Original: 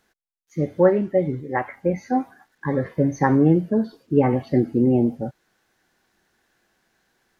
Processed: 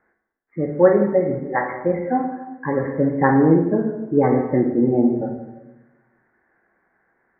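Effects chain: steep low-pass 2100 Hz 72 dB/oct; low shelf 150 Hz -10.5 dB; reverb RT60 1.1 s, pre-delay 13 ms, DRR 3 dB; gain +2.5 dB

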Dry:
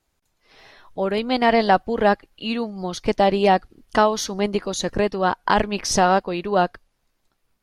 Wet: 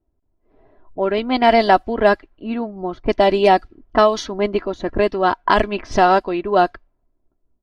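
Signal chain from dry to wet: comb 3 ms, depth 50%; low-pass opened by the level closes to 470 Hz, open at -12 dBFS; gain +2.5 dB

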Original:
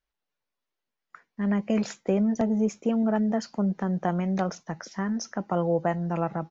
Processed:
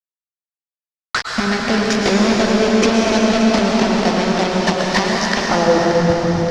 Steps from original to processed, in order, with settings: bell 140 Hz -9.5 dB 0.7 oct; low-pass opened by the level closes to 2800 Hz, open at -23.5 dBFS; high shelf 5900 Hz -5 dB; in parallel at -1 dB: compressor 6:1, threshold -35 dBFS, peak gain reduction 13.5 dB; on the sum: flipped gate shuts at -22 dBFS, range -26 dB; fuzz box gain 55 dB, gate -52 dBFS; low-pass sweep 5300 Hz -> 120 Hz, 5.31–5.96; echo with dull and thin repeats by turns 0.288 s, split 1100 Hz, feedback 74%, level -10 dB; plate-style reverb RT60 4.8 s, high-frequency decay 1×, pre-delay 95 ms, DRR -2.5 dB

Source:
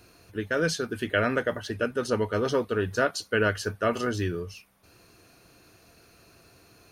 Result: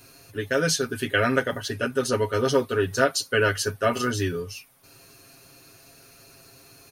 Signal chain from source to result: high shelf 4800 Hz +9.5 dB; comb 7.4 ms, depth 84%

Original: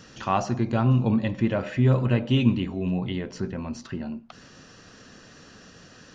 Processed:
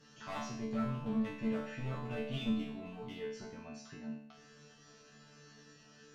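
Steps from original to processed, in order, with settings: one-sided clip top -23 dBFS; resonator bank D3 fifth, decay 0.65 s; gain +6.5 dB

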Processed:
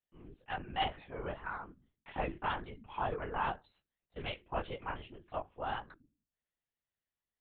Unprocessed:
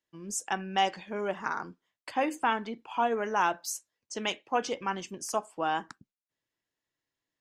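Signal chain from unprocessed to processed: de-hum 45.77 Hz, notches 8; chorus 1.9 Hz, delay 19.5 ms, depth 7.9 ms; LPC vocoder at 8 kHz whisper; gain -5 dB

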